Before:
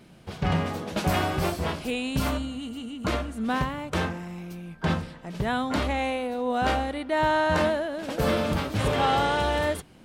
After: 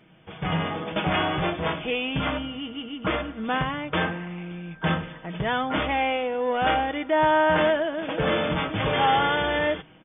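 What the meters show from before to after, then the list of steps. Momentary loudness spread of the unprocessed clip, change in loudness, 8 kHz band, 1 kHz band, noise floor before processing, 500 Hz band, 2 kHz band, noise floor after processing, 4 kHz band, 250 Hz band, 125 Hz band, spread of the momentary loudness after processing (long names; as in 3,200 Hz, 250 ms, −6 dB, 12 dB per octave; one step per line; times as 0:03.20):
9 LU, +2.0 dB, below −40 dB, +2.5 dB, −50 dBFS, +2.0 dB, +4.0 dB, −49 dBFS, +3.5 dB, 0.0 dB, −1.5 dB, 10 LU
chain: in parallel at −3 dB: hard clipping −25 dBFS, distortion −9 dB
on the sum: spectral tilt +1.5 dB per octave
automatic gain control gain up to 6 dB
linear-phase brick-wall low-pass 3,600 Hz
comb filter 6.3 ms, depth 41%
level −7 dB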